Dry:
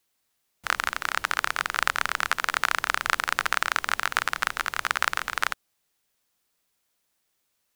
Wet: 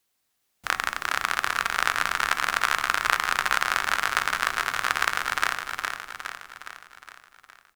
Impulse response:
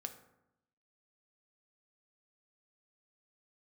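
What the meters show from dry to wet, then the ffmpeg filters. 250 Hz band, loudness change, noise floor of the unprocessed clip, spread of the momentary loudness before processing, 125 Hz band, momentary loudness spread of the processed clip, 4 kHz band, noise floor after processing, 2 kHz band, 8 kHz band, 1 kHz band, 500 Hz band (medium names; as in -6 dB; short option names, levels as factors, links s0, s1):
+2.0 dB, +1.0 dB, -75 dBFS, 4 LU, +1.5 dB, 13 LU, +1.5 dB, -75 dBFS, +1.5 dB, +1.5 dB, +2.0 dB, +1.5 dB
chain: -filter_complex "[0:a]aecho=1:1:413|826|1239|1652|2065|2478|2891:0.562|0.304|0.164|0.0885|0.0478|0.0258|0.0139,asplit=2[s0][s1];[1:a]atrim=start_sample=2205,asetrate=66150,aresample=44100[s2];[s1][s2]afir=irnorm=-1:irlink=0,volume=2[s3];[s0][s3]amix=inputs=2:normalize=0,volume=0.531"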